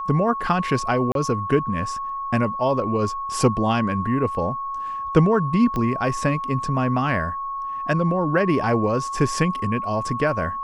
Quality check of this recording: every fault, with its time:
tone 1100 Hz -26 dBFS
1.12–1.15 gap 32 ms
5.76 pop -14 dBFS

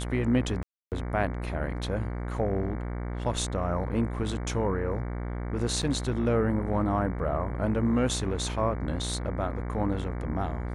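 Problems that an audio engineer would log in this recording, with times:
buzz 60 Hz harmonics 38 -33 dBFS
0.63–0.92 gap 0.288 s
5.82–5.83 gap 5.8 ms

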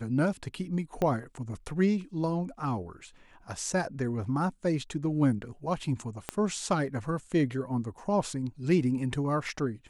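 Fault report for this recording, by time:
1.02 pop -17 dBFS
6.29 pop -15 dBFS

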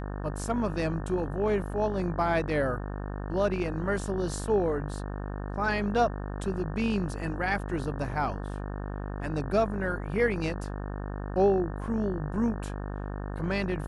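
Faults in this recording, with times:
buzz 50 Hz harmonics 36 -35 dBFS

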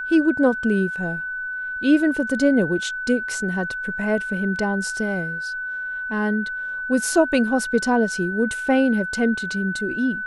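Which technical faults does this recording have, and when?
tone 1500 Hz -26 dBFS

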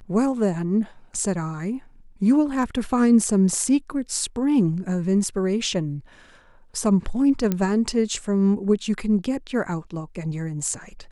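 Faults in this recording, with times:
7.52 pop -10 dBFS

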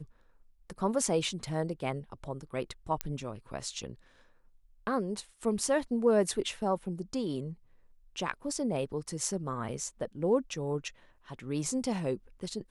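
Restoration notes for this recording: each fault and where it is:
3.01 pop -13 dBFS

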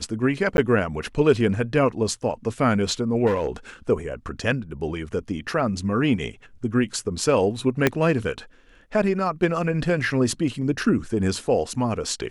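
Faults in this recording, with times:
0.57–0.58 gap 11 ms
3.26–3.47 clipped -18 dBFS
7.87 pop -4 dBFS

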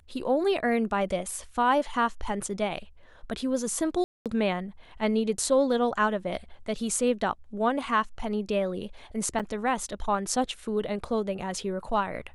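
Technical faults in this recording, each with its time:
4.04–4.26 gap 0.217 s
9.39–9.4 gap 6.7 ms

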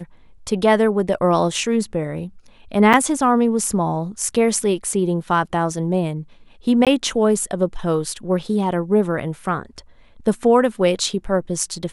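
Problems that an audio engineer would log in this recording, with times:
2.93–2.94 gap 6.8 ms
6.85–6.87 gap 17 ms

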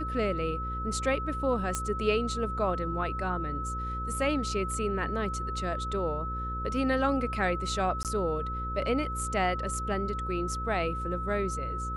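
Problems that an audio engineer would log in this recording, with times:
buzz 60 Hz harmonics 9 -36 dBFS
tone 1300 Hz -34 dBFS
1.75 pop -15 dBFS
8.03–8.05 gap 18 ms

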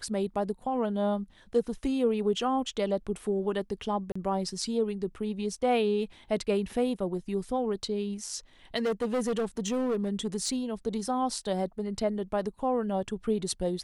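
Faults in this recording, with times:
4.12–4.16 gap 35 ms
8.76–10.57 clipped -24.5 dBFS

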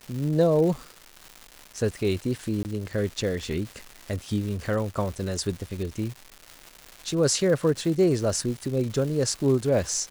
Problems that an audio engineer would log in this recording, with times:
crackle 400/s -33 dBFS
2.63–2.65 gap 19 ms

